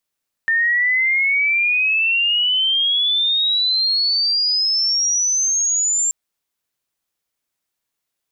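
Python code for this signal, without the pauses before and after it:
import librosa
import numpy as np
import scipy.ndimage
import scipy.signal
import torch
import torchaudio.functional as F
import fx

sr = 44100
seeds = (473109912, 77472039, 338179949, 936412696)

y = fx.chirp(sr, length_s=5.63, from_hz=1800.0, to_hz=7400.0, law='logarithmic', from_db=-14.0, to_db=-15.5)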